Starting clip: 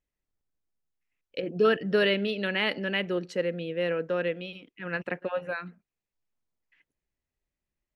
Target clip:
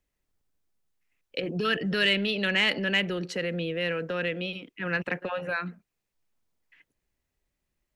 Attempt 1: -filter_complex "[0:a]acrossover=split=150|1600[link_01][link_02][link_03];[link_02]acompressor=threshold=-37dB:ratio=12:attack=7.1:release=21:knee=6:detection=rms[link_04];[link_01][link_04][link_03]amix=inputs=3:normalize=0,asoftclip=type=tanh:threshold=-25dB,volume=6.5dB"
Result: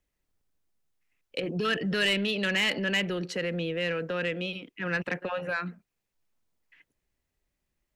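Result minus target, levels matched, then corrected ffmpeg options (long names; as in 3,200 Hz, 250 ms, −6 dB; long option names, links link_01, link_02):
soft clipping: distortion +11 dB
-filter_complex "[0:a]acrossover=split=150|1600[link_01][link_02][link_03];[link_02]acompressor=threshold=-37dB:ratio=12:attack=7.1:release=21:knee=6:detection=rms[link_04];[link_01][link_04][link_03]amix=inputs=3:normalize=0,asoftclip=type=tanh:threshold=-17dB,volume=6.5dB"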